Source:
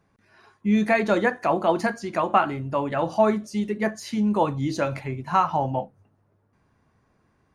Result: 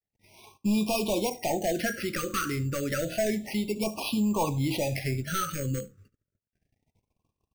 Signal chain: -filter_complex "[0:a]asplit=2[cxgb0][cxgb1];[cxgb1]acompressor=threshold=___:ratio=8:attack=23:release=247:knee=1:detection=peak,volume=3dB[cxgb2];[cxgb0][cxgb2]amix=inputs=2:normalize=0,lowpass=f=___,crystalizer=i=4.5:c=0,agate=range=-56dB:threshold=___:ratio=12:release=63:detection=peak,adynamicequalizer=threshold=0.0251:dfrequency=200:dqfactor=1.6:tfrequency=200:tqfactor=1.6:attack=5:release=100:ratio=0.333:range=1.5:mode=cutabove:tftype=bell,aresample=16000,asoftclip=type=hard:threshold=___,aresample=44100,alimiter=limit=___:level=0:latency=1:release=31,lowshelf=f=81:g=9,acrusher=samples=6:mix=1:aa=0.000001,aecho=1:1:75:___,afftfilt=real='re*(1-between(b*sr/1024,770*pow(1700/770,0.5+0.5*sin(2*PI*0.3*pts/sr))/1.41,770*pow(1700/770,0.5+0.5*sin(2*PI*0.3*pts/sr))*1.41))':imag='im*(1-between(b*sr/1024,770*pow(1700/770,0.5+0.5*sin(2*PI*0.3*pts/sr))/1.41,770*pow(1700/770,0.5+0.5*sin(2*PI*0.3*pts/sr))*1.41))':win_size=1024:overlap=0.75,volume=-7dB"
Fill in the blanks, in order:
-28dB, 4700, -55dB, -13.5dB, -14.5dB, 0.0794